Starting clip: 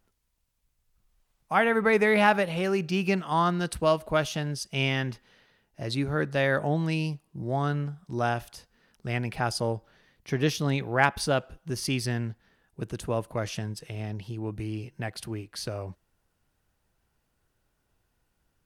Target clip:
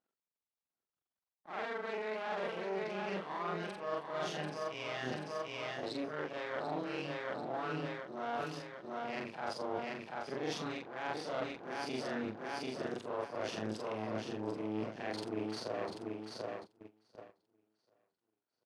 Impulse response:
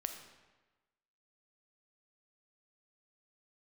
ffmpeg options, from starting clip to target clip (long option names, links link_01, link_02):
-af "afftfilt=real='re':imag='-im':win_size=4096:overlap=0.75,aeval=exprs='max(val(0),0)':channel_layout=same,highpass=240,lowpass=3600,lowshelf=frequency=410:gain=-6,aecho=1:1:740|1480|2220|2960:0.376|0.147|0.0572|0.0223,agate=range=-18dB:threshold=-60dB:ratio=16:detection=peak,areverse,acompressor=threshold=-47dB:ratio=20,areverse,equalizer=frequency=2300:width_type=o:width=1.7:gain=-7,volume=14.5dB"